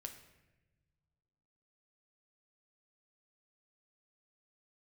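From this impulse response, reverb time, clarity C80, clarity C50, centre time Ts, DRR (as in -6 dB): not exponential, 11.5 dB, 9.5 dB, 18 ms, 5.0 dB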